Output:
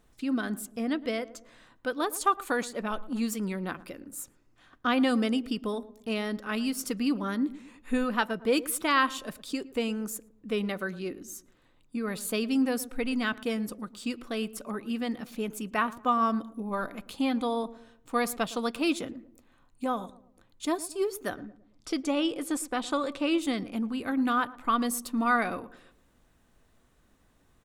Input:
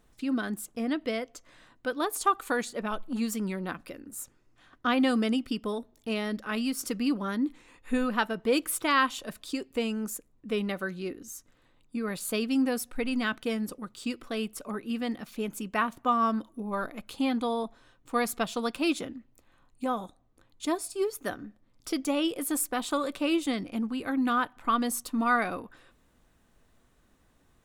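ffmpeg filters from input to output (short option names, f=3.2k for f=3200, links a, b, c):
-filter_complex "[0:a]asettb=1/sr,asplit=3[a][b][c];[a]atrim=end=21.364[d];[b]atrim=start=21.36:end=23.38,asetpts=PTS-STARTPTS,afade=t=in:d=0.004:c=qsin,afade=t=out:st=2.016:d=0.004:c=qsin,lowpass=7.6k[e];[c]atrim=start=23.376[f];[d][e]acrossfade=d=0.004:c1=hsin:c2=qsin[g];[g][f]acrossfade=d=0.004:c1=qsin:c2=hsin,asplit=2[h][i];[i]adelay=112,lowpass=f=880:p=1,volume=-16dB,asplit=2[j][k];[k]adelay=112,lowpass=f=880:p=1,volume=0.46,asplit=2[l][m];[m]adelay=112,lowpass=f=880:p=1,volume=0.46,asplit=2[n][o];[o]adelay=112,lowpass=f=880:p=1,volume=0.46[p];[h][j][l][n][p]amix=inputs=5:normalize=0"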